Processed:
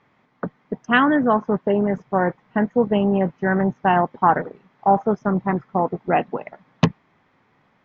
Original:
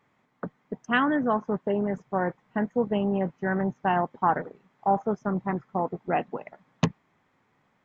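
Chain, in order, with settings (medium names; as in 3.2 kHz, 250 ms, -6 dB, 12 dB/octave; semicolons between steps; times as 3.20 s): low-pass 5.6 kHz 24 dB/octave; trim +7 dB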